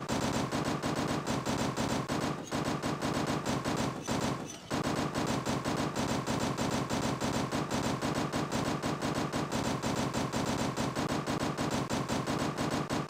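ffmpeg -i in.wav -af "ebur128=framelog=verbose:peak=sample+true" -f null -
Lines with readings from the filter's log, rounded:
Integrated loudness:
  I:         -33.0 LUFS
  Threshold: -43.0 LUFS
Loudness range:
  LRA:         0.7 LU
  Threshold: -53.0 LUFS
  LRA low:   -33.3 LUFS
  LRA high:  -32.6 LUFS
Sample peak:
  Peak:      -20.5 dBFS
True peak:
  Peak:      -20.5 dBFS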